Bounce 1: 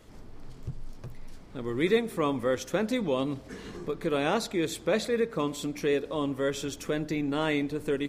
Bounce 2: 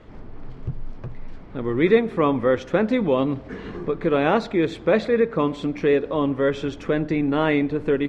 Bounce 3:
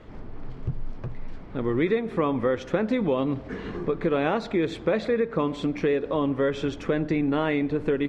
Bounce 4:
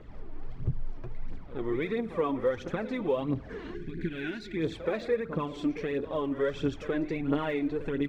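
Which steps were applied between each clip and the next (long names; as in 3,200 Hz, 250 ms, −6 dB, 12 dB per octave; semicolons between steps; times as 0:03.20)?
low-pass filter 2,400 Hz 12 dB per octave; level +8 dB
downward compressor 6 to 1, threshold −20 dBFS, peak gain reduction 9.5 dB
echo ahead of the sound 74 ms −13 dB; gain on a spectral selection 0:03.74–0:04.57, 410–1,400 Hz −21 dB; phase shifter 1.5 Hz, delay 3.4 ms, feedback 56%; level −7.5 dB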